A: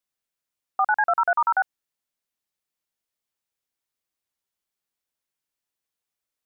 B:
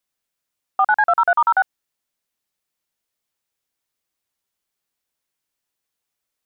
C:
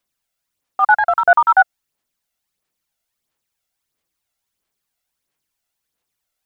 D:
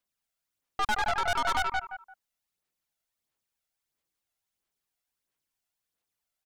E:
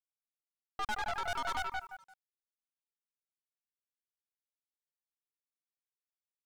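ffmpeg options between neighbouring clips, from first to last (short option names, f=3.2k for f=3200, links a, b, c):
-af "acontrast=30"
-af "aphaser=in_gain=1:out_gain=1:delay=1.5:decay=0.49:speed=1.5:type=sinusoidal,volume=1.5dB"
-af "aecho=1:1:172|344|516:0.376|0.0902|0.0216,aeval=exprs='(tanh(10*val(0)+0.65)-tanh(0.65))/10':c=same,volume=-5dB"
-af "acrusher=bits=8:mix=0:aa=0.5,volume=-8dB"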